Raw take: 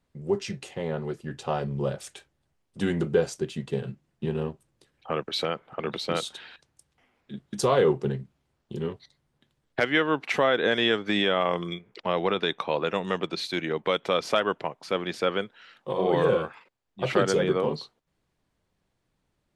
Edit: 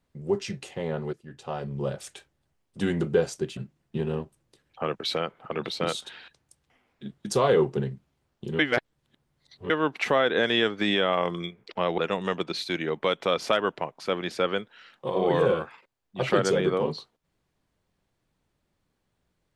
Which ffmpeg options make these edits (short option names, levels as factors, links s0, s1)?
-filter_complex "[0:a]asplit=6[s0][s1][s2][s3][s4][s5];[s0]atrim=end=1.13,asetpts=PTS-STARTPTS,afade=t=out:st=1.126:d=0.004:c=hsin:silence=0.223872[s6];[s1]atrim=start=1.13:end=3.572,asetpts=PTS-STARTPTS,afade=t=in:d=0.92:silence=0.223872[s7];[s2]atrim=start=3.848:end=8.872[s8];[s3]atrim=start=8.868:end=9.982,asetpts=PTS-STARTPTS,areverse[s9];[s4]atrim=start=9.978:end=12.262[s10];[s5]atrim=start=12.808[s11];[s6][s7]concat=n=2:v=0:a=1[s12];[s12][s8]acrossfade=d=0.004:c1=hsin:c2=hsin[s13];[s13][s9]acrossfade=d=0.004:c1=hsin:c2=hsin[s14];[s14][s10]acrossfade=d=0.004:c1=hsin:c2=hsin[s15];[s15][s11]acrossfade=d=0.004:c1=hsin:c2=hsin"